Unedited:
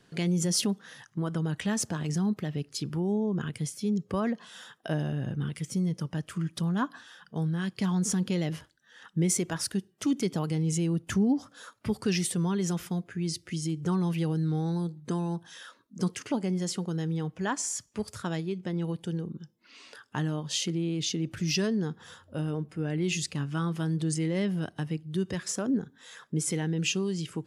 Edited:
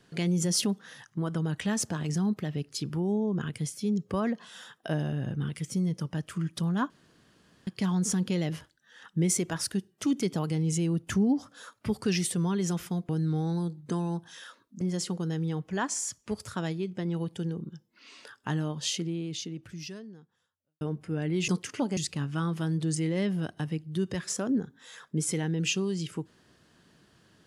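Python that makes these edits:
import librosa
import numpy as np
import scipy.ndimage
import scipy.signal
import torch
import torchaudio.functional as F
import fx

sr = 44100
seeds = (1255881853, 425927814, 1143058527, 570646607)

y = fx.edit(x, sr, fx.room_tone_fill(start_s=6.9, length_s=0.77),
    fx.cut(start_s=13.09, length_s=1.19),
    fx.move(start_s=16.0, length_s=0.49, to_s=23.16),
    fx.fade_out_span(start_s=20.5, length_s=1.99, curve='qua'), tone=tone)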